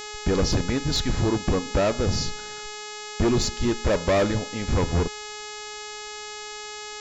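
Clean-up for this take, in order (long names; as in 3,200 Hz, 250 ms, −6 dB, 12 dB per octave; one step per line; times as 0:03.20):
click removal
hum removal 421.5 Hz, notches 18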